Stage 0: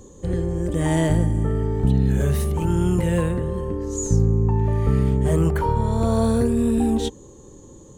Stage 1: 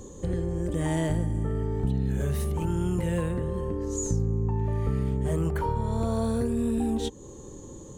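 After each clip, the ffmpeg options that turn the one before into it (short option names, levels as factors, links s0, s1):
-af "acompressor=threshold=0.0251:ratio=2,volume=1.19"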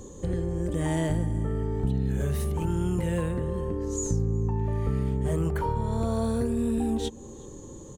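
-filter_complex "[0:a]asplit=2[s0][s1];[s1]adelay=367.3,volume=0.0794,highshelf=f=4000:g=-8.27[s2];[s0][s2]amix=inputs=2:normalize=0"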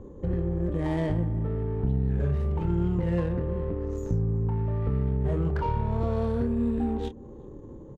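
-filter_complex "[0:a]adynamicsmooth=sensitivity=3:basefreq=1000,asplit=2[s0][s1];[s1]adelay=29,volume=0.316[s2];[s0][s2]amix=inputs=2:normalize=0"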